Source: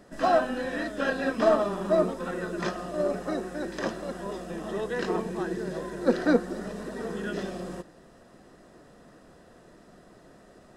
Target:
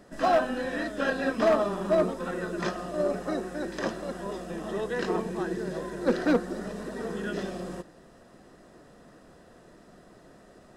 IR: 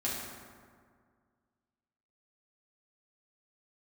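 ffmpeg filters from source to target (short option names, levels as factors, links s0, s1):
-af "volume=6.68,asoftclip=hard,volume=0.15"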